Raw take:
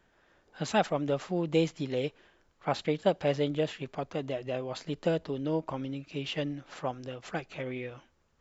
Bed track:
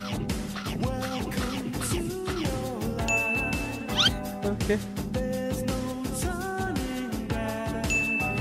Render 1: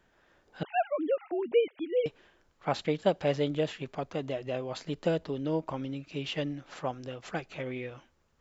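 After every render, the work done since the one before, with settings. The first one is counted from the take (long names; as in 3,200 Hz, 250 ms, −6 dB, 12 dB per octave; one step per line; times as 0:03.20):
0:00.63–0:02.06: three sine waves on the formant tracks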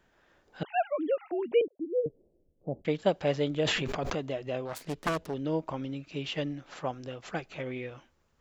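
0:01.61–0:02.85: Butterworth low-pass 560 Hz
0:03.62–0:04.15: level that may fall only so fast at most 22 dB per second
0:04.65–0:05.34: phase distortion by the signal itself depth 0.93 ms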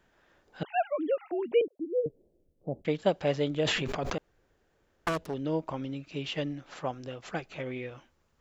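0:04.18–0:05.07: fill with room tone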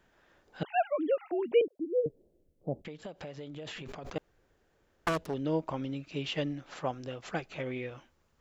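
0:02.83–0:04.16: downward compressor 10 to 1, threshold −39 dBFS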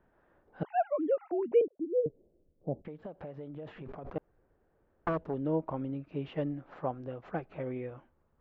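low-pass filter 1,200 Hz 12 dB per octave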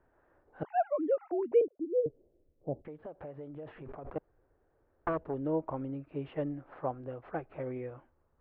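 low-pass filter 2,300 Hz 12 dB per octave
parametric band 190 Hz −10.5 dB 0.43 octaves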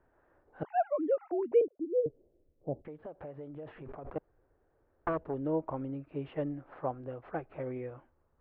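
no processing that can be heard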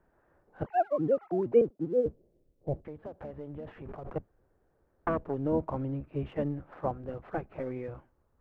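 sub-octave generator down 1 octave, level −2 dB
in parallel at −10 dB: dead-zone distortion −53 dBFS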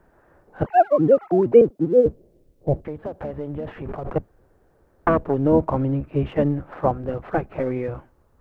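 level +11.5 dB
brickwall limiter −3 dBFS, peak gain reduction 2 dB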